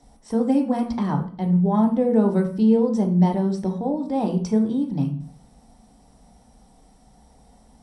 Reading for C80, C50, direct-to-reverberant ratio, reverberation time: 14.5 dB, 9.5 dB, 3.0 dB, 0.45 s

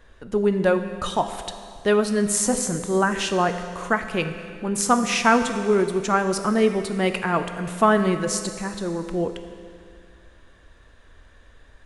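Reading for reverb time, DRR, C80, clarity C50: 2.3 s, 7.0 dB, 9.5 dB, 8.5 dB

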